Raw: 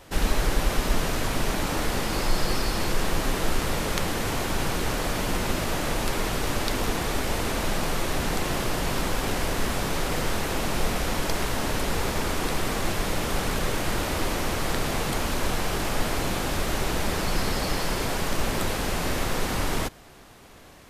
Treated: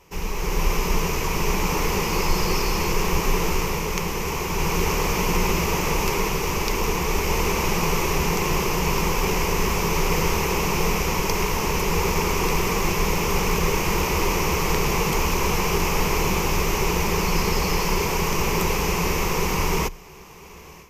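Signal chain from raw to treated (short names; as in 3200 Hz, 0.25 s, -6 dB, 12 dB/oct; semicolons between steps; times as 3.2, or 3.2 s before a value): ripple EQ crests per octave 0.78, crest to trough 12 dB; AGC gain up to 11.5 dB; gain -6.5 dB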